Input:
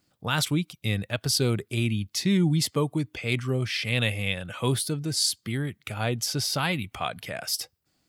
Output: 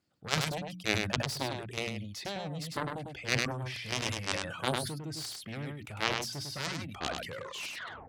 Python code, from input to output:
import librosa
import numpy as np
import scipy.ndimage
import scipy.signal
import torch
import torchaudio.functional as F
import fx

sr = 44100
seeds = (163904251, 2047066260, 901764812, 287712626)

p1 = fx.tape_stop_end(x, sr, length_s=0.87)
p2 = fx.rider(p1, sr, range_db=5, speed_s=0.5)
p3 = p1 + (p2 * 10.0 ** (-2.0 / 20.0))
p4 = fx.dereverb_blind(p3, sr, rt60_s=0.73)
p5 = fx.high_shelf(p4, sr, hz=3400.0, db=-4.0)
p6 = fx.cheby_harmonics(p5, sr, harmonics=(3, 7), levels_db=(-8, -43), full_scale_db=-5.5)
p7 = scipy.signal.sosfilt(scipy.signal.butter(2, 45.0, 'highpass', fs=sr, output='sos'), p6)
p8 = fx.high_shelf(p7, sr, hz=8600.0, db=-5.5)
p9 = fx.hum_notches(p8, sr, base_hz=60, count=5)
p10 = p9 + fx.echo_single(p9, sr, ms=101, db=-5.5, dry=0)
y = fx.sustainer(p10, sr, db_per_s=45.0)